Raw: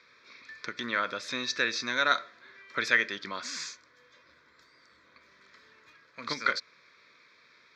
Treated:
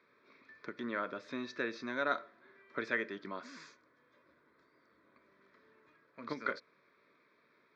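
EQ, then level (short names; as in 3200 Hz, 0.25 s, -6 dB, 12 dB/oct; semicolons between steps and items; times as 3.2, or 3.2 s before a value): band-pass 350 Hz, Q 0.69; notch 500 Hz, Q 12; 0.0 dB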